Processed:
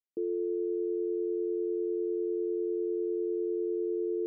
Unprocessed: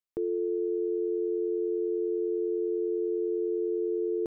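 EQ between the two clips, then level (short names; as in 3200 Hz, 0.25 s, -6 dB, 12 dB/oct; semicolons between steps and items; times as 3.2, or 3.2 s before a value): Butterworth band-pass 320 Hz, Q 1.2; -1.5 dB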